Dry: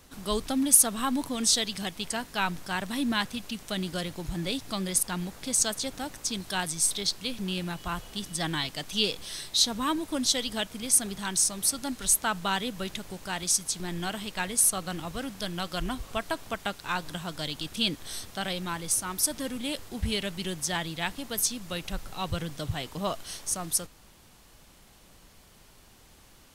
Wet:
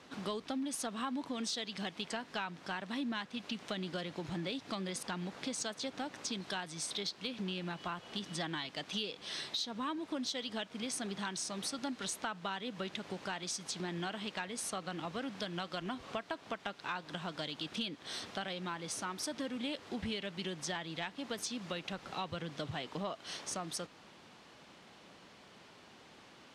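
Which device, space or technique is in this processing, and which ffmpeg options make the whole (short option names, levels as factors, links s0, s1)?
AM radio: -af "highpass=190,lowpass=4000,acompressor=threshold=0.0126:ratio=6,asoftclip=type=tanh:threshold=0.0562,volume=1.33"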